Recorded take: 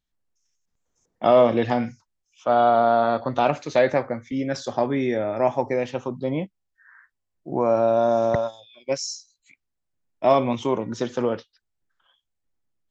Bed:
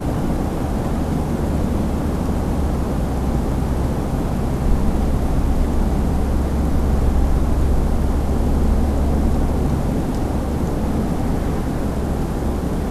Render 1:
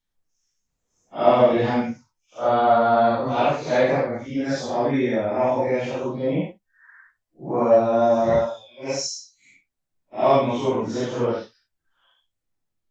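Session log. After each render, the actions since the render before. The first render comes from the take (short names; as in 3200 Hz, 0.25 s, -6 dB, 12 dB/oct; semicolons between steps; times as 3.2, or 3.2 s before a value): phase scrambler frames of 0.2 s; in parallel at -12 dB: soft clip -16 dBFS, distortion -13 dB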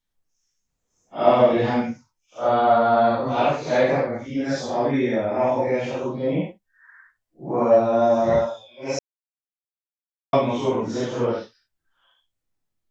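8.99–10.33 mute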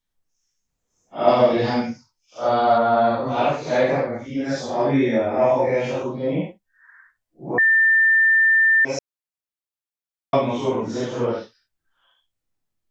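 1.28–2.78 bell 4800 Hz +12.5 dB 0.48 oct; 4.77–6.03 doubler 22 ms -2 dB; 7.58–8.85 bleep 1790 Hz -12.5 dBFS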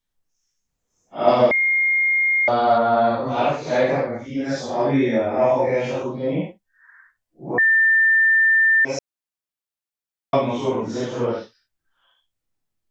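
1.51–2.48 bleep 2130 Hz -15.5 dBFS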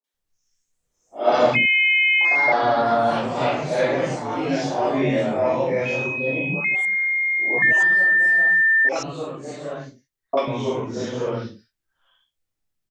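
echoes that change speed 0.228 s, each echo +3 st, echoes 2, each echo -6 dB; three bands offset in time mids, highs, lows 40/140 ms, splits 280/880 Hz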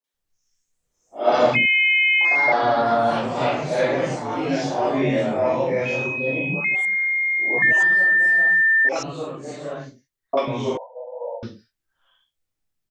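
10.77–11.43 brick-wall FIR band-pass 480–1000 Hz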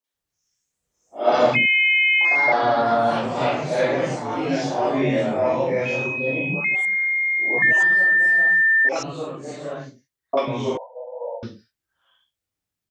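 HPF 50 Hz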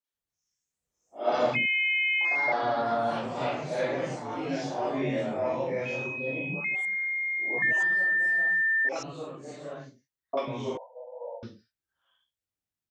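gain -8.5 dB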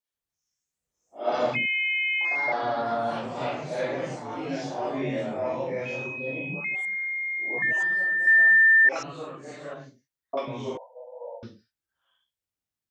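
8.27–9.74 bell 1700 Hz +8.5 dB 1.3 oct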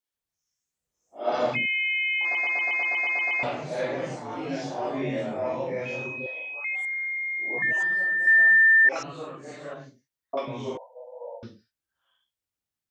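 2.23 stutter in place 0.12 s, 10 plays; 6.26–7.17 HPF 640 Hz 24 dB/oct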